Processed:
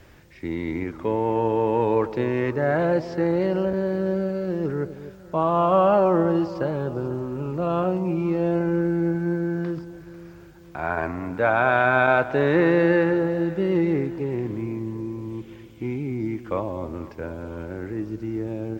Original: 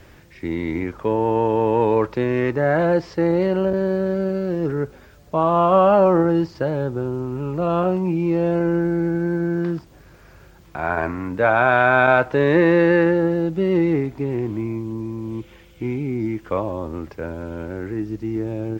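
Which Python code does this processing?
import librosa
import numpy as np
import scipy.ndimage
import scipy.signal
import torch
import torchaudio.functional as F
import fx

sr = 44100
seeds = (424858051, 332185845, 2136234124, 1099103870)

y = fx.echo_alternate(x, sr, ms=247, hz=840.0, feedback_pct=65, wet_db=-13.0)
y = F.gain(torch.from_numpy(y), -3.5).numpy()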